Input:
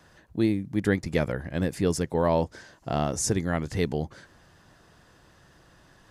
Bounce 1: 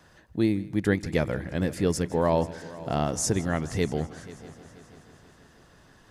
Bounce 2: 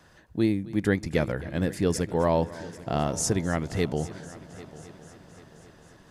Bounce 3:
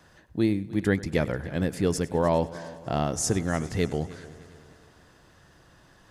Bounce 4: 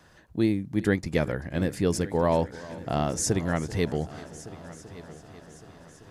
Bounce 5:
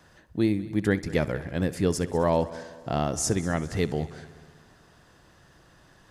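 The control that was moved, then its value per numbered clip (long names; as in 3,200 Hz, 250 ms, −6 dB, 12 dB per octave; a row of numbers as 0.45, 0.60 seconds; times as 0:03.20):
echo machine with several playback heads, delay time: 161, 264, 101, 387, 65 milliseconds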